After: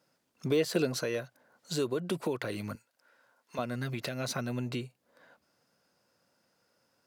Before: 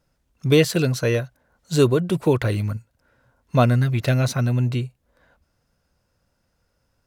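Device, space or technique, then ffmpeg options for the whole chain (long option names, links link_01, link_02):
broadcast voice chain: -filter_complex "[0:a]highpass=80,deesser=0.45,acompressor=threshold=-22dB:ratio=5,equalizer=frequency=4700:width_type=o:width=0.24:gain=3.5,alimiter=limit=-20dB:level=0:latency=1:release=356,highpass=220,asettb=1/sr,asplit=3[link_01][link_02][link_03];[link_01]atrim=end=0.464[link_04];[link_02]atrim=start=0.46:end=1.03,asetpts=PTS-STARTPTS,afade=type=in:duration=0.004:curve=qsin,afade=type=out:start_time=0.566:duration=0.004:curve=qsin,equalizer=frequency=480:width_type=o:width=2.6:gain=5[link_05];[link_03]atrim=start=1.026[link_06];[link_04][link_05]acrossfade=duration=0.004:curve1=hsin:curve2=qsin[link_07];[link_07][link_06]acrossfade=duration=0.004:curve1=qsin:curve2=hsin,asettb=1/sr,asplit=3[link_08][link_09][link_10];[link_08]atrim=end=2.754[link_11];[link_09]atrim=start=2.75:end=3.59,asetpts=PTS-STARTPTS,afade=type=in:duration=0.004:curve=qsin,afade=type=out:start_time=0.836:duration=0.004:curve=qsin,highpass=frequency=830:poles=1[link_12];[link_10]atrim=start=3.586[link_13];[link_11][link_12]acrossfade=duration=0.004:curve1=hsin:curve2=qsin[link_14];[link_14][link_13]acrossfade=duration=0.004:curve1=qsin:curve2=hsin"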